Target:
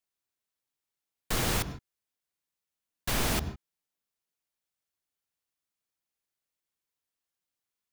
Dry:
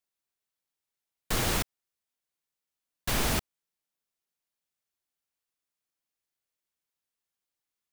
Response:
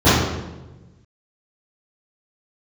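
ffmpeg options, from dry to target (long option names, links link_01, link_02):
-filter_complex "[0:a]asplit=2[link_01][link_02];[1:a]atrim=start_sample=2205,atrim=end_sample=3969,adelay=77[link_03];[link_02][link_03]afir=irnorm=-1:irlink=0,volume=-39dB[link_04];[link_01][link_04]amix=inputs=2:normalize=0,volume=-1dB"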